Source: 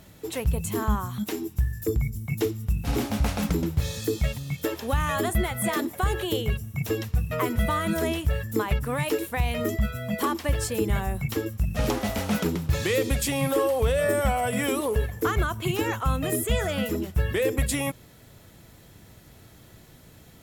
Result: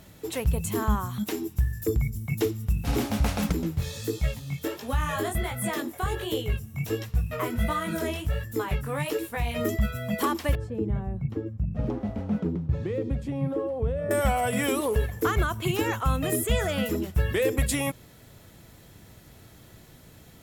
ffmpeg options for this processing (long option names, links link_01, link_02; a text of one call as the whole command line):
ffmpeg -i in.wav -filter_complex "[0:a]asettb=1/sr,asplit=3[link_01][link_02][link_03];[link_01]atrim=end=3.524[link_04];[link_02]atrim=start=3.52:end=9.56,asetpts=PTS-STARTPTS,afade=type=in:duration=0.004:curve=qsin,afade=type=out:start_time=6.036:duration=0.004:curve=qsin,flanger=delay=15.5:depth=7:speed=1.4[link_05];[link_03]atrim=start=9.556[link_06];[link_04][link_05]acrossfade=duration=0.004:curve1=hsin:curve2=qsin[link_07];[link_07][link_06]acrossfade=duration=0.004:curve1=qsin:curve2=hsin,asettb=1/sr,asplit=3[link_08][link_09][link_10];[link_08]atrim=end=10.554[link_11];[link_09]atrim=start=10.55:end=14.11,asetpts=PTS-STARTPTS,afade=type=in:duration=0.004:curve=qsin,afade=type=out:start_time=3.556:duration=0.004:curve=qsin,bandpass=frequency=150:width_type=q:width=0.57[link_12];[link_10]atrim=start=14.106[link_13];[link_11][link_12]acrossfade=duration=0.004:curve1=hsin:curve2=qsin[link_14];[link_14][link_13]acrossfade=duration=0.004:curve1=qsin:curve2=hsin" out.wav